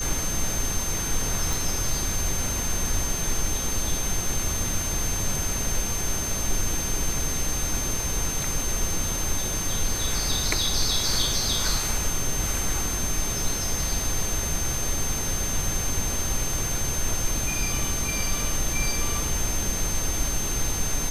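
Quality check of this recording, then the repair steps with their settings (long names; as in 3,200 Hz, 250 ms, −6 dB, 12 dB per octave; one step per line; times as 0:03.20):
whistle 6,300 Hz −29 dBFS
0:01.53: click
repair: click removal
notch filter 6,300 Hz, Q 30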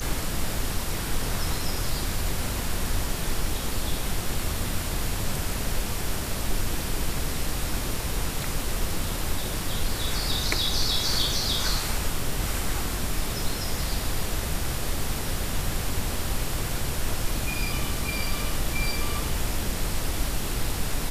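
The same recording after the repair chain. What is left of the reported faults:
none of them is left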